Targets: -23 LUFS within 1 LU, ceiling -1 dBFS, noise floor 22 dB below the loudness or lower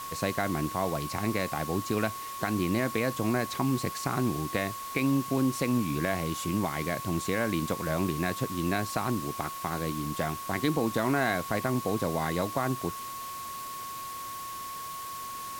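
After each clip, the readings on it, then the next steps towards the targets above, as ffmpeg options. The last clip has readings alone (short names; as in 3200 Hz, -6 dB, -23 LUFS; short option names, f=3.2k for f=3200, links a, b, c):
steady tone 1100 Hz; tone level -37 dBFS; noise floor -39 dBFS; noise floor target -53 dBFS; loudness -30.5 LUFS; peak -14.0 dBFS; loudness target -23.0 LUFS
-> -af "bandreject=f=1.1k:w=30"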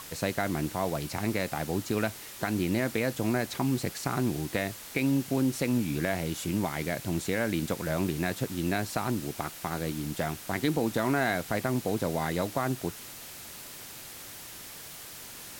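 steady tone none; noise floor -45 dBFS; noise floor target -53 dBFS
-> -af "afftdn=nr=8:nf=-45"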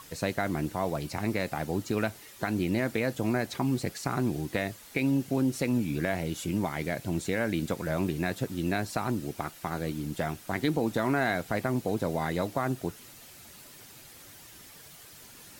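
noise floor -51 dBFS; noise floor target -53 dBFS
-> -af "afftdn=nr=6:nf=-51"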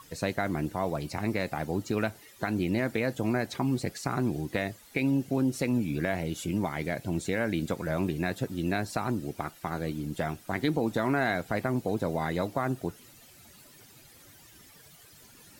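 noise floor -55 dBFS; loudness -30.5 LUFS; peak -14.5 dBFS; loudness target -23.0 LUFS
-> -af "volume=7.5dB"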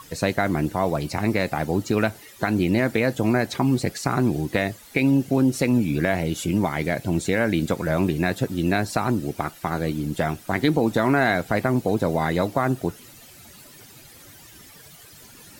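loudness -23.0 LUFS; peak -7.0 dBFS; noise floor -47 dBFS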